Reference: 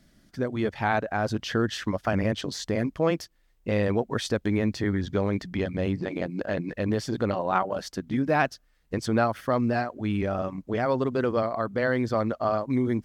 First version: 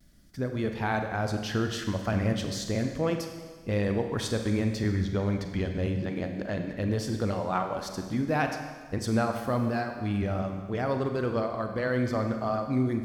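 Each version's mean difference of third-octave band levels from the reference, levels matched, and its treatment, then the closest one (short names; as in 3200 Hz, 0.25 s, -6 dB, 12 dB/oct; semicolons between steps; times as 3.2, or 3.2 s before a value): 5.5 dB: low shelf 120 Hz +11 dB; Schroeder reverb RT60 1.5 s, combs from 32 ms, DRR 5 dB; vibrato 0.49 Hz 23 cents; high shelf 5800 Hz +9 dB; gain -5.5 dB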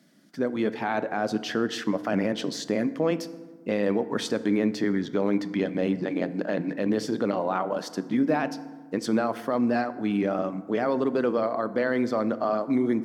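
3.5 dB: HPF 180 Hz 24 dB/oct; low shelf 480 Hz +4 dB; limiter -15 dBFS, peak gain reduction 8.5 dB; FDN reverb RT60 1.4 s, low-frequency decay 1.25×, high-frequency decay 0.5×, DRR 12 dB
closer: second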